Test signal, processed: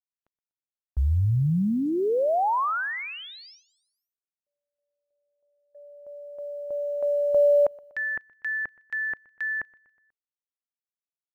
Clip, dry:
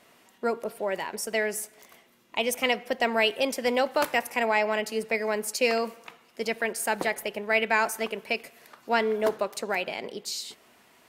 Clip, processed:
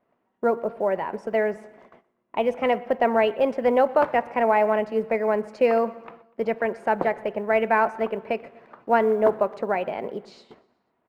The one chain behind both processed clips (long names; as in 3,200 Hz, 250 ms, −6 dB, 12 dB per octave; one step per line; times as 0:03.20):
low-pass filter 1,100 Hz 12 dB per octave
noise gate −58 dBFS, range −18 dB
dynamic equaliser 300 Hz, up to −4 dB, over −41 dBFS, Q 1.4
floating-point word with a short mantissa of 6 bits
on a send: repeating echo 122 ms, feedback 54%, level −23.5 dB
on the sum: level +7.5 dB